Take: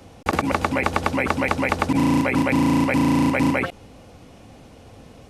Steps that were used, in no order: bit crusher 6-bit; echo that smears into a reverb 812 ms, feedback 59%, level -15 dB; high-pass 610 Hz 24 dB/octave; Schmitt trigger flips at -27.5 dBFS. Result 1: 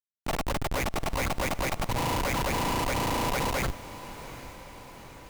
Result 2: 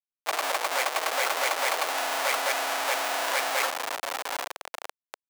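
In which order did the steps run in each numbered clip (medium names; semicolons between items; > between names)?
high-pass > bit crusher > Schmitt trigger > echo that smears into a reverb; bit crusher > echo that smears into a reverb > Schmitt trigger > high-pass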